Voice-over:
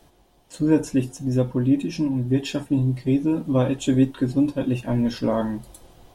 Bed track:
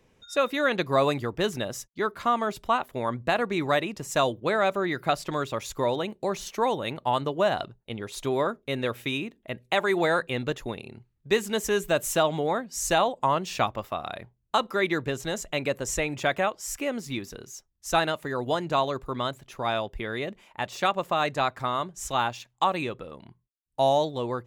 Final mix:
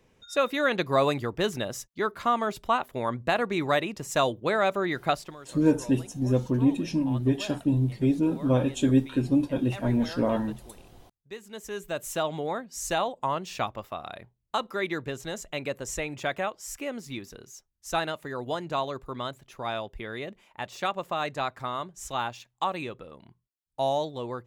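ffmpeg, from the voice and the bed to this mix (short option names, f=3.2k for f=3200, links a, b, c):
-filter_complex "[0:a]adelay=4950,volume=-3dB[a];[1:a]volume=12.5dB,afade=t=out:st=5.11:d=0.25:silence=0.141254,afade=t=in:st=11.4:d=0.95:silence=0.223872[b];[a][b]amix=inputs=2:normalize=0"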